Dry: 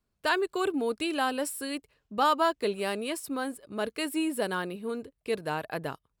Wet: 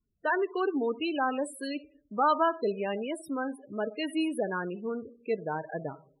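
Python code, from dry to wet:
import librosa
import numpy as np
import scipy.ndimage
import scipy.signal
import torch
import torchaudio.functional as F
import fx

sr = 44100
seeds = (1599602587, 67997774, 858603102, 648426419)

y = fx.rev_freeverb(x, sr, rt60_s=0.56, hf_ratio=0.35, predelay_ms=5, drr_db=15.0)
y = fx.spec_topn(y, sr, count=16)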